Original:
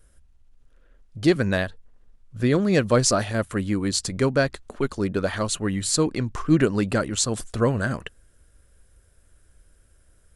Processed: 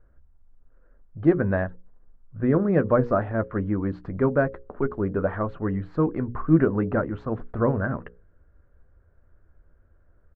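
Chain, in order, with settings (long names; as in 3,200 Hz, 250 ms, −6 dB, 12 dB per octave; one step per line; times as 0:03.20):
low-pass filter 1,500 Hz 24 dB per octave
mains-hum notches 60/120/180/240/300/360/420/480/540 Hz
double-tracking delay 12 ms −13 dB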